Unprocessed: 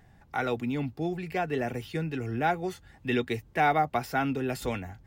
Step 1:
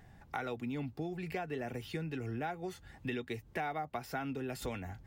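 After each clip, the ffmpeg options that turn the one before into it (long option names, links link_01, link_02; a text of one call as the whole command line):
ffmpeg -i in.wav -af "acompressor=threshold=-36dB:ratio=5" out.wav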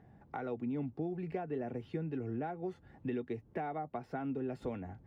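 ffmpeg -i in.wav -af "bandpass=frequency=300:width_type=q:width=0.58:csg=0,volume=2.5dB" out.wav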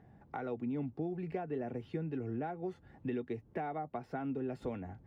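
ffmpeg -i in.wav -af anull out.wav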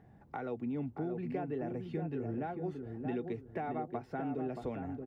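ffmpeg -i in.wav -filter_complex "[0:a]asplit=2[link_01][link_02];[link_02]adelay=626,lowpass=frequency=1100:poles=1,volume=-5dB,asplit=2[link_03][link_04];[link_04]adelay=626,lowpass=frequency=1100:poles=1,volume=0.29,asplit=2[link_05][link_06];[link_06]adelay=626,lowpass=frequency=1100:poles=1,volume=0.29,asplit=2[link_07][link_08];[link_08]adelay=626,lowpass=frequency=1100:poles=1,volume=0.29[link_09];[link_01][link_03][link_05][link_07][link_09]amix=inputs=5:normalize=0" out.wav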